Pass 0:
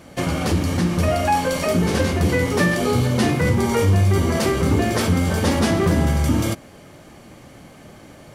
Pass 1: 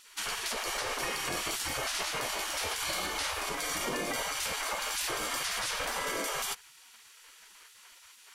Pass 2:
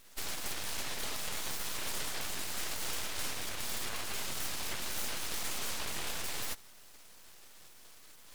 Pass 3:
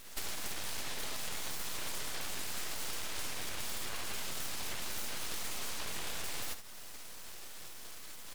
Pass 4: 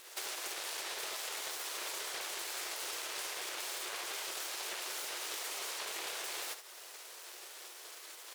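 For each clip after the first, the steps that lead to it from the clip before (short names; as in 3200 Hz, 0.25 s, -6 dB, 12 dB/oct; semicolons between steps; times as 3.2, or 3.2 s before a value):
spectral gate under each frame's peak -20 dB weak; bell 740 Hz -2.5 dB 0.25 oct; limiter -23.5 dBFS, peak gain reduction 9.5 dB
low shelf 440 Hz -11 dB; reverse; upward compressor, threshold -48 dBFS; reverse; full-wave rectifier
compressor 6:1, threshold -42 dBFS, peak gain reduction 11 dB; echo 72 ms -9.5 dB; gain +7 dB
brick-wall FIR high-pass 320 Hz; Doppler distortion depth 0.17 ms; gain +1.5 dB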